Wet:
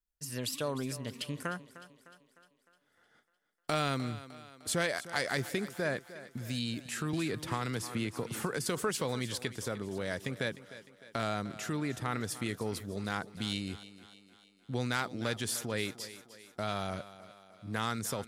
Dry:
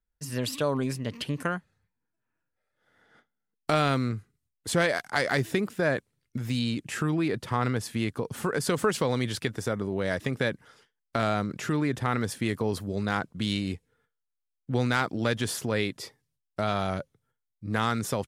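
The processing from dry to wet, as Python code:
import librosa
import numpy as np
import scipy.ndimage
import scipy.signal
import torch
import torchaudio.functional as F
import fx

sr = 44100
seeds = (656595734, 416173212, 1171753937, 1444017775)

y = fx.high_shelf(x, sr, hz=3500.0, db=8.0)
y = fx.echo_thinned(y, sr, ms=304, feedback_pct=54, hz=160.0, wet_db=-15.0)
y = fx.band_squash(y, sr, depth_pct=100, at=(7.13, 8.66))
y = y * librosa.db_to_amplitude(-8.0)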